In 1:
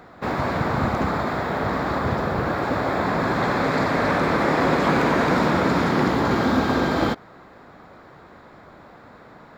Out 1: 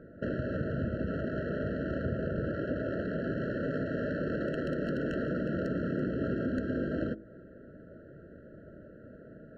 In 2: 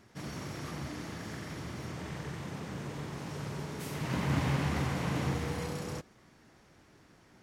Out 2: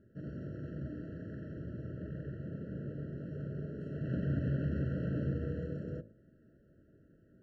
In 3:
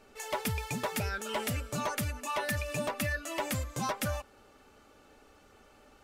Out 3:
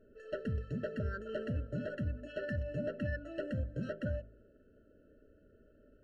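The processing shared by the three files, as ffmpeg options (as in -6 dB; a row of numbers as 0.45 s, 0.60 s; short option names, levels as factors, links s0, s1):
-af "aeval=exprs='(mod(2.82*val(0)+1,2)-1)/2.82':c=same,acompressor=threshold=0.0447:ratio=6,bandreject=f=54.23:t=h:w=4,bandreject=f=108.46:t=h:w=4,bandreject=f=162.69:t=h:w=4,bandreject=f=216.92:t=h:w=4,bandreject=f=271.15:t=h:w=4,bandreject=f=325.38:t=h:w=4,bandreject=f=379.61:t=h:w=4,bandreject=f=433.84:t=h:w=4,bandreject=f=488.07:t=h:w=4,bandreject=f=542.3:t=h:w=4,bandreject=f=596.53:t=h:w=4,bandreject=f=650.76:t=h:w=4,bandreject=f=704.99:t=h:w=4,bandreject=f=759.22:t=h:w=4,adynamicsmooth=sensitivity=1:basefreq=920,afftfilt=real='re*eq(mod(floor(b*sr/1024/650),2),0)':imag='im*eq(mod(floor(b*sr/1024/650),2),0)':win_size=1024:overlap=0.75"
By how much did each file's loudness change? -12.0 LU, -2.5 LU, -5.0 LU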